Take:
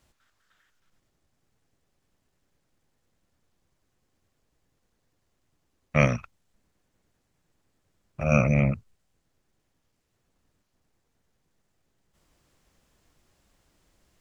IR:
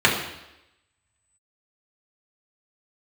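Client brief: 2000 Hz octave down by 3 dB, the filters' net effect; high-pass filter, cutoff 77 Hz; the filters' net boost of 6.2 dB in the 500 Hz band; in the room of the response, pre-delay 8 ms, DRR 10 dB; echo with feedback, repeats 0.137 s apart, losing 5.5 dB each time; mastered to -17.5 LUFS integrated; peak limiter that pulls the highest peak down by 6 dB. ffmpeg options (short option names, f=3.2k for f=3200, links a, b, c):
-filter_complex "[0:a]highpass=77,equalizer=f=500:t=o:g=7.5,equalizer=f=2k:t=o:g=-4,alimiter=limit=-9.5dB:level=0:latency=1,aecho=1:1:137|274|411|548|685|822|959:0.531|0.281|0.149|0.079|0.0419|0.0222|0.0118,asplit=2[a][b];[1:a]atrim=start_sample=2205,adelay=8[c];[b][c]afir=irnorm=-1:irlink=0,volume=-31dB[d];[a][d]amix=inputs=2:normalize=0,volume=6.5dB"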